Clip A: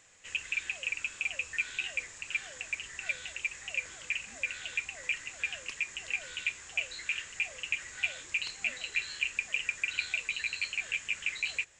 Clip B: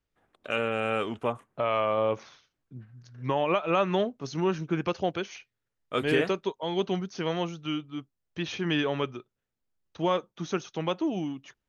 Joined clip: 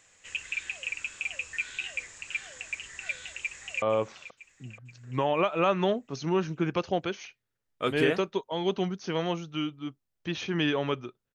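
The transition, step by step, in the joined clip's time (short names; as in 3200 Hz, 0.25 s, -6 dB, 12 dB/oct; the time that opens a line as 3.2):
clip A
3.41–3.82 echo throw 0.48 s, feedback 60%, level -13 dB
3.82 switch to clip B from 1.93 s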